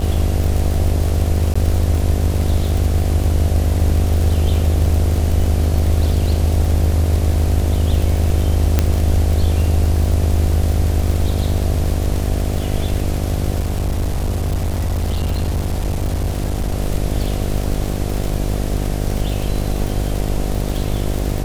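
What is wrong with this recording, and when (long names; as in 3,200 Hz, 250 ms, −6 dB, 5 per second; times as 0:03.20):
mains buzz 50 Hz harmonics 15 −21 dBFS
surface crackle 69 per second −20 dBFS
0:01.54–0:01.55: drop-out 15 ms
0:08.79: click −1 dBFS
0:13.59–0:16.78: clipping −15 dBFS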